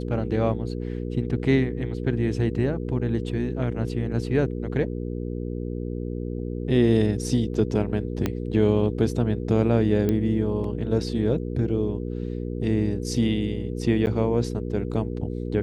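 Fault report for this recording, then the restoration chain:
mains hum 60 Hz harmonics 8 −30 dBFS
0:08.26: click −11 dBFS
0:10.09: click −13 dBFS
0:14.06–0:14.07: drop-out 9.6 ms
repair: click removal
hum removal 60 Hz, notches 8
repair the gap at 0:14.06, 9.6 ms

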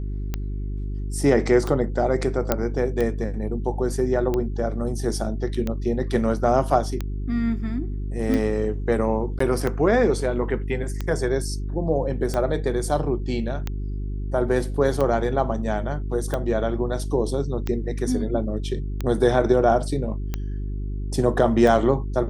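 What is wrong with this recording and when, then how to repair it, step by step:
mains hum 50 Hz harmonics 8 −28 dBFS
scratch tick 45 rpm −13 dBFS
0:02.52: click −5 dBFS
0:09.39–0:09.40: drop-out 14 ms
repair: click removal
hum removal 50 Hz, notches 8
repair the gap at 0:09.39, 14 ms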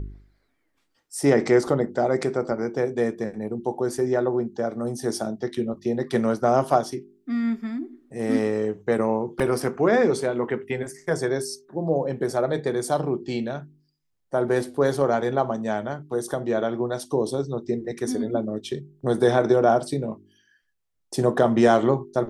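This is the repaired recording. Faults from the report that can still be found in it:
0:02.52: click

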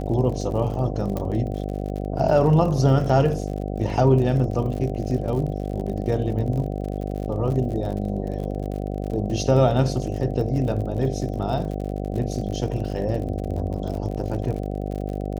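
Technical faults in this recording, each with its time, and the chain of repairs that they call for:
mains buzz 50 Hz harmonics 15 −28 dBFS
surface crackle 52 per second −31 dBFS
0:01.17: click −15 dBFS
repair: click removal
hum removal 50 Hz, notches 15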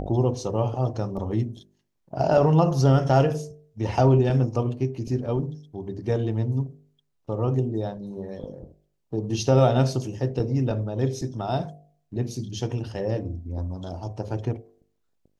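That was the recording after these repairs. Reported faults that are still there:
0:01.17: click

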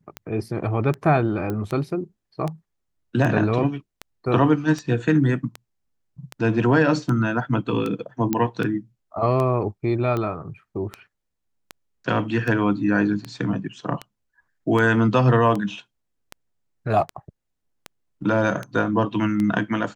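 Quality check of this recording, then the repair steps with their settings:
scratch tick 78 rpm −15 dBFS
0:01.50: click −16 dBFS
0:08.33: click −8 dBFS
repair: click removal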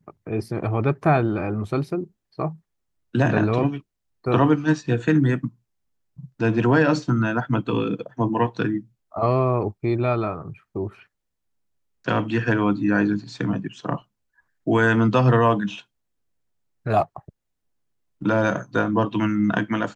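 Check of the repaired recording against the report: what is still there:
none of them is left

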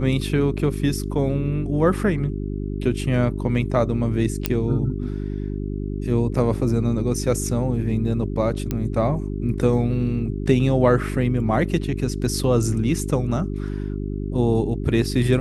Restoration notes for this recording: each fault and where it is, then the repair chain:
mains hum 50 Hz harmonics 8 −27 dBFS
0:04.46: click −4 dBFS
0:08.71: click −11 dBFS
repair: click removal
hum removal 50 Hz, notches 8

